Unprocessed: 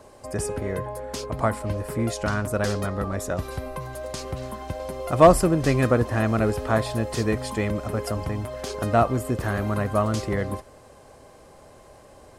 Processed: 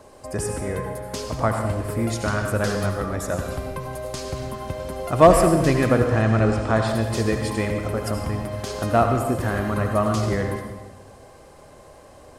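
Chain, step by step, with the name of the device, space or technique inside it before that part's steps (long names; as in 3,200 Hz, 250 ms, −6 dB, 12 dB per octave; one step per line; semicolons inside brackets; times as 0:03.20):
0:06.04–0:06.88: low-pass filter 8,300 Hz 24 dB per octave
saturated reverb return (on a send at −4 dB: convolution reverb RT60 1.2 s, pre-delay 67 ms + soft clipping −8.5 dBFS, distortion −20 dB)
on the sum: level +1 dB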